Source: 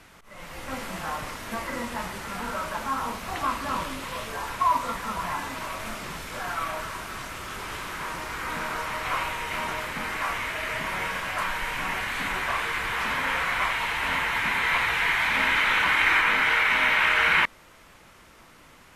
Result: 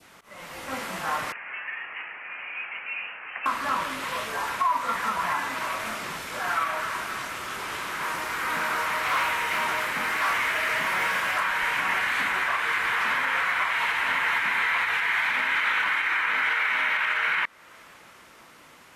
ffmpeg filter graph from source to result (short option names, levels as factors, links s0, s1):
-filter_complex "[0:a]asettb=1/sr,asplit=3[s0][s1][s2];[s0]atrim=end=1.324[s3];[s1]atrim=start=1.32:end=3.46,asetpts=PTS-STARTPTS,afade=t=in:d=0.004:c=qsin,afade=t=out:st=2.136:d=0.004:c=qsin,highpass=f=1400:w=0.5412,highpass=f=1400:w=1.3066,lowpass=f=3200:t=q:w=0.5098,lowpass=f=3200:t=q:w=0.6013,lowpass=f=3200:t=q:w=0.9,lowpass=f=3200:t=q:w=2.563,afreqshift=-3800[s4];[s2]atrim=start=3.456[s5];[s3][s4]acrossfade=d=0.004:c1=hsin:c2=qsin[s6];[s6][s5]acrossfade=d=0.004:c1=qsin:c2=hsin,asettb=1/sr,asplit=3[s7][s8][s9];[s7]atrim=end=8.024[s10];[s8]atrim=start=8.02:end=11.38,asetpts=PTS-STARTPTS,afade=t=in:d=0.004:c=qsin,afade=t=out:st=3.356:d=0.004:c=qsin,highshelf=f=12000:g=6,volume=20,asoftclip=hard,volume=0.0501[s11];[s9]atrim=start=11.376[s12];[s10][s11]acrossfade=d=0.004:c1=hsin:c2=qsin[s13];[s13][s12]acrossfade=d=0.004:c1=qsin:c2=hsin,highpass=f=230:p=1,adynamicequalizer=threshold=0.0158:dfrequency=1600:dqfactor=0.87:tfrequency=1600:tqfactor=0.87:attack=5:release=100:ratio=0.375:range=3.5:mode=boostabove:tftype=bell,alimiter=limit=0.141:level=0:latency=1:release=334,volume=1.19"